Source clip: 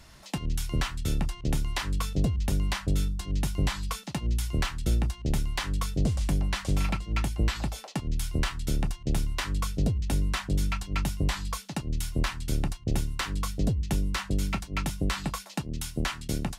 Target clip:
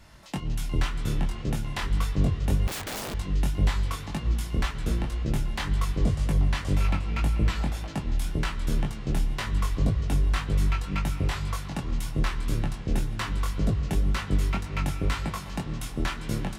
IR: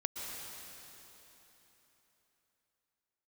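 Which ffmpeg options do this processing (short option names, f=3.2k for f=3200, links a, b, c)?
-filter_complex "[0:a]asplit=2[a][b];[b]lowpass=3.7k[c];[1:a]atrim=start_sample=2205[d];[c][d]afir=irnorm=-1:irlink=0,volume=-4.5dB[e];[a][e]amix=inputs=2:normalize=0,flanger=delay=18.5:depth=4.7:speed=1.9,asettb=1/sr,asplit=3[f][g][h];[f]atrim=end=2.674[i];[g]atrim=start=2.67:end=3.14,asetpts=PTS-STARTPTS,afade=t=in:d=0.004:c=qsin,afade=t=out:st=0.466:d=0.004:c=qsin,aeval=exprs='(mod(28.2*val(0)+1,2)-1)/28.2':c=same[j];[h]atrim=start=3.136[k];[i][j]acrossfade=d=0.004:c1=hsin:c2=qsin[l];[l][k]acrossfade=d=0.004:c1=qsin:c2=hsin"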